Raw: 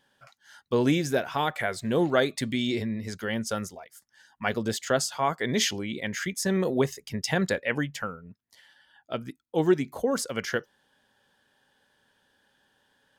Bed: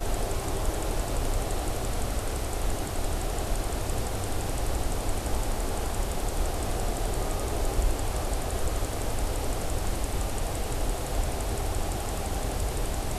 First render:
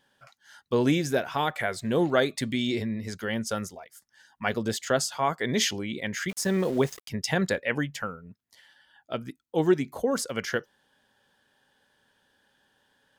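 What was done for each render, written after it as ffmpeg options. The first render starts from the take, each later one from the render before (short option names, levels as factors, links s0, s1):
-filter_complex "[0:a]asplit=3[s0][s1][s2];[s0]afade=t=out:st=6.28:d=0.02[s3];[s1]aeval=exprs='val(0)*gte(abs(val(0)),0.0112)':c=same,afade=t=in:st=6.28:d=0.02,afade=t=out:st=7.07:d=0.02[s4];[s2]afade=t=in:st=7.07:d=0.02[s5];[s3][s4][s5]amix=inputs=3:normalize=0"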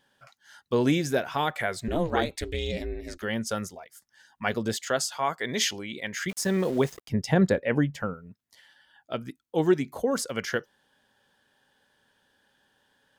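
-filter_complex "[0:a]asettb=1/sr,asplit=3[s0][s1][s2];[s0]atrim=end=1.884[s3];[s1]atrim=start=1.88:end=3.23,asetpts=PTS-STARTPTS,afade=t=in:d=0.004:c=qsin,afade=t=out:st=1.346:d=0.004:c=qsin,aeval=exprs='val(0)*sin(2*PI*170*n/s)':c=same[s4];[s2]atrim=start=3.226[s5];[s3][s4]acrossfade=d=0.004:c1=hsin:c2=qsin[s6];[s6][s5]acrossfade=d=0.004:c1=qsin:c2=hsin,asettb=1/sr,asplit=3[s7][s8][s9];[s7]atrim=end=4.794[s10];[s8]atrim=start=4.79:end=6.24,asetpts=PTS-STARTPTS,afade=t=in:d=0.004:c=qsin,afade=t=out:st=1.446:d=0.004:c=qsin,lowshelf=f=380:g=-7.5[s11];[s9]atrim=start=6.236[s12];[s10][s11]acrossfade=d=0.004:c1=hsin:c2=qsin[s13];[s13][s12]acrossfade=d=0.004:c1=qsin:c2=hsin,asettb=1/sr,asplit=3[s14][s15][s16];[s14]atrim=end=6.924[s17];[s15]atrim=start=6.92:end=8.14,asetpts=PTS-STARTPTS,afade=t=in:d=0.004:c=qsin,afade=t=out:st=1.216:d=0.004:c=qsin,tiltshelf=f=1100:g=6.5[s18];[s16]atrim=start=8.136[s19];[s17][s18]acrossfade=d=0.004:c1=hsin:c2=qsin[s20];[s20][s19]acrossfade=d=0.004:c1=qsin:c2=hsin"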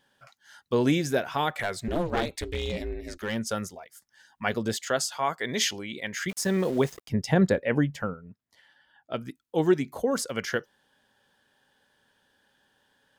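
-filter_complex "[0:a]asettb=1/sr,asplit=3[s0][s1][s2];[s0]atrim=end=1.504[s3];[s1]atrim=start=1.5:end=3.39,asetpts=PTS-STARTPTS,afade=t=in:d=0.004:c=qsin,afade=t=out:st=1.886:d=0.004:c=qsin,aeval=exprs='clip(val(0),-1,0.0562)':c=same[s4];[s2]atrim=start=3.386[s5];[s3][s4]acrossfade=d=0.004:c1=hsin:c2=qsin[s6];[s6][s5]acrossfade=d=0.004:c1=qsin:c2=hsin,asettb=1/sr,asplit=3[s7][s8][s9];[s7]atrim=end=8.104[s10];[s8]atrim=start=8.1:end=9.14,asetpts=PTS-STARTPTS,afade=t=in:d=0.004:c=qsin,afade=t=out:st=1.036:d=0.004:c=qsin,highshelf=f=3500:g=-10.5[s11];[s9]atrim=start=9.136[s12];[s10][s11]acrossfade=d=0.004:c1=hsin:c2=qsin[s13];[s13][s12]acrossfade=d=0.004:c1=qsin:c2=hsin"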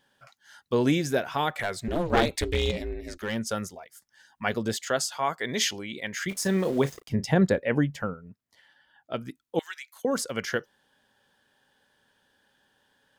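-filter_complex "[0:a]asettb=1/sr,asplit=3[s0][s1][s2];[s0]atrim=end=6.274[s3];[s1]atrim=start=6.27:end=7.27,asetpts=PTS-STARTPTS,afade=t=in:d=0.004:c=qsin,afade=t=out:st=0.996:d=0.004:c=qsin,asplit=2[s4][s5];[s5]adelay=36,volume=0.224[s6];[s4][s6]amix=inputs=2:normalize=0,atrim=end_sample=44100[s7];[s2]atrim=start=7.266[s8];[s3][s7]acrossfade=d=0.004:c1=hsin:c2=qsin[s9];[s9][s8]acrossfade=d=0.004:c1=qsin:c2=hsin,asettb=1/sr,asplit=3[s10][s11][s12];[s10]atrim=end=9.594[s13];[s11]atrim=start=9.59:end=10.05,asetpts=PTS-STARTPTS,afade=t=in:d=0.004:c=qsin,afade=t=out:st=0.456:d=0.004:c=qsin,highpass=f=1500:w=0.5412,highpass=f=1500:w=1.3066[s14];[s12]atrim=start=10.046[s15];[s13][s14]acrossfade=d=0.004:c1=hsin:c2=qsin[s16];[s16][s15]acrossfade=d=0.004:c1=qsin:c2=hsin,asplit=3[s17][s18][s19];[s17]atrim=end=2.102[s20];[s18]atrim=start=2.098:end=2.712,asetpts=PTS-STARTPTS,volume=1.88[s21];[s19]atrim=start=2.708[s22];[s20][s21]acrossfade=d=0.004:c1=hsin:c2=hsin[s23];[s23][s22]acrossfade=d=0.004:c1=hsin:c2=hsin"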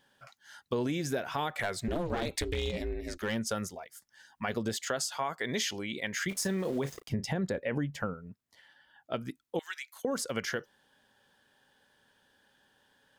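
-af "alimiter=limit=0.141:level=0:latency=1:release=38,acompressor=threshold=0.0355:ratio=4"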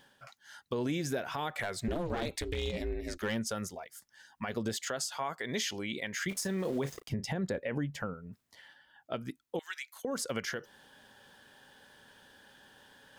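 -af "areverse,acompressor=mode=upward:threshold=0.00398:ratio=2.5,areverse,alimiter=limit=0.0668:level=0:latency=1:release=214"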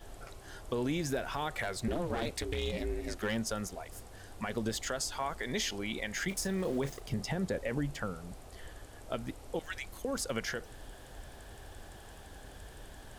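-filter_complex "[1:a]volume=0.0944[s0];[0:a][s0]amix=inputs=2:normalize=0"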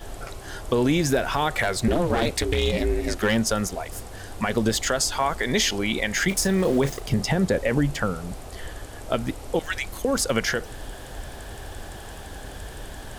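-af "volume=3.98"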